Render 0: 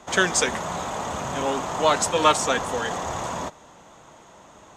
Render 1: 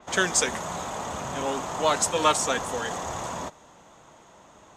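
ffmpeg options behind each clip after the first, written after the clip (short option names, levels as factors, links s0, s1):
-af "adynamicequalizer=threshold=0.0141:dfrequency=5500:dqfactor=0.7:tfrequency=5500:tqfactor=0.7:attack=5:release=100:ratio=0.375:range=2.5:mode=boostabove:tftype=highshelf,volume=0.668"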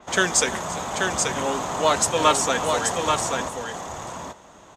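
-af "aecho=1:1:343|833:0.126|0.596,volume=1.41"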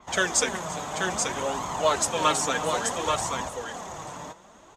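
-af "flanger=delay=0.9:depth=5.9:regen=38:speed=0.6:shape=sinusoidal"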